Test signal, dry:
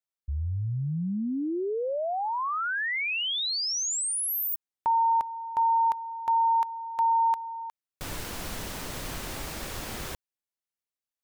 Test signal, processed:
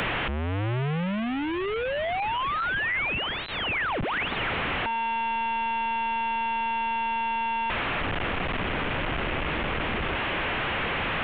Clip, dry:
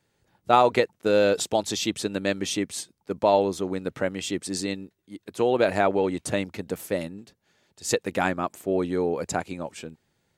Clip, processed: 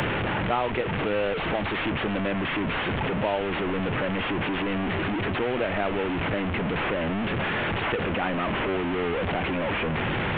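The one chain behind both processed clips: delta modulation 16 kbps, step -16.5 dBFS; three-band squash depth 70%; gain -5 dB

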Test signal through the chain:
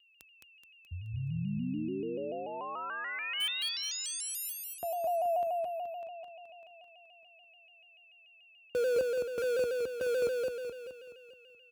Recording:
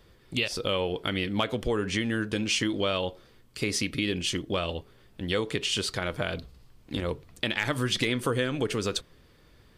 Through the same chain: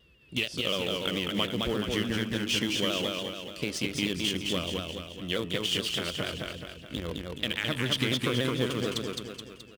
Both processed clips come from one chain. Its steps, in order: whine 2700 Hz -57 dBFS; thirty-one-band EQ 100 Hz -9 dB, 800 Hz -6 dB, 3150 Hz +7 dB; in parallel at -4.5 dB: sample gate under -23 dBFS; on the sum: HPF 50 Hz 24 dB/oct; low shelf 260 Hz +7.5 dB; on a send: feedback echo 0.213 s, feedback 51%, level -3 dB; on the sum: shaped vibrato saw down 6.9 Hz, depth 100 cents; gain -8.5 dB

